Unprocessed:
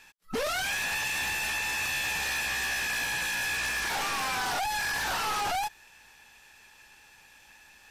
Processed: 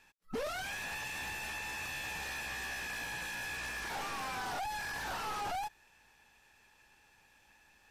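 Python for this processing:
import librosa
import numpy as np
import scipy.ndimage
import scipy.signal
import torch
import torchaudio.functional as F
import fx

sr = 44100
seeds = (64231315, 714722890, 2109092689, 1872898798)

y = fx.tilt_shelf(x, sr, db=3.5, hz=1300.0)
y = F.gain(torch.from_numpy(y), -8.5).numpy()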